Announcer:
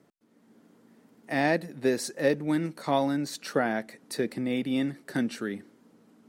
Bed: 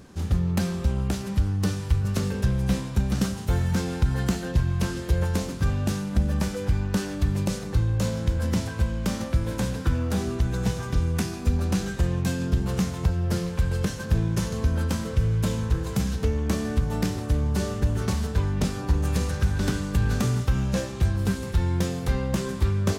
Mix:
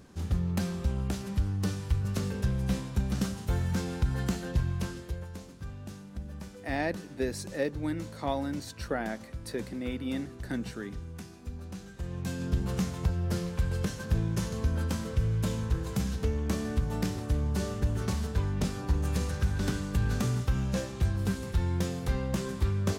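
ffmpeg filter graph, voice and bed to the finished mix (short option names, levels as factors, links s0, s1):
-filter_complex "[0:a]adelay=5350,volume=0.501[s0];[1:a]volume=2.11,afade=t=out:st=4.65:d=0.6:silence=0.266073,afade=t=in:st=11.93:d=0.63:silence=0.251189[s1];[s0][s1]amix=inputs=2:normalize=0"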